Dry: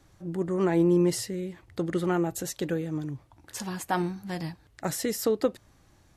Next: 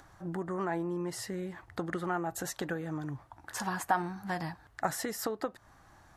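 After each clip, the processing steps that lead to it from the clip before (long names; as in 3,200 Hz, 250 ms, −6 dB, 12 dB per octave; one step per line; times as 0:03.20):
downward compressor 5 to 1, threshold −31 dBFS, peak gain reduction 11.5 dB
flat-topped bell 1,100 Hz +10 dB
upward compression, threshold −52 dBFS
level −2 dB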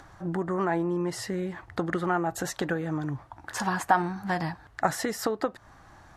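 high-shelf EQ 10,000 Hz −11.5 dB
level +6.5 dB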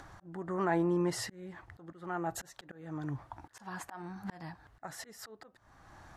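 volume swells 602 ms
level −1.5 dB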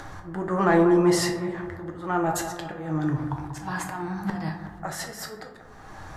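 in parallel at −10.5 dB: soft clipping −29.5 dBFS, distortion −11 dB
on the sum: bucket-brigade delay 187 ms, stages 2,048, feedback 58%, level −9.5 dB
rectangular room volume 74 cubic metres, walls mixed, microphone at 0.51 metres
level +8 dB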